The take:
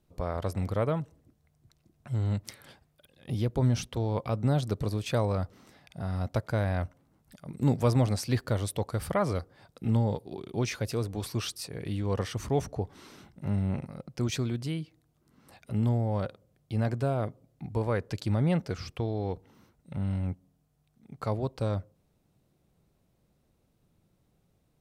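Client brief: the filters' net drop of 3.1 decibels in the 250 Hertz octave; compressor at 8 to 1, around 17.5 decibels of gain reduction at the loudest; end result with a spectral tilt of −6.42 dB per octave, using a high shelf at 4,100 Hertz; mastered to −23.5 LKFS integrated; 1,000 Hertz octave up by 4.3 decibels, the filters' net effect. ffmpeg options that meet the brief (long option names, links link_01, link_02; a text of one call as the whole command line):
ffmpeg -i in.wav -af "equalizer=frequency=250:width_type=o:gain=-4.5,equalizer=frequency=1000:width_type=o:gain=6.5,highshelf=frequency=4100:gain=-9,acompressor=threshold=-39dB:ratio=8,volume=21dB" out.wav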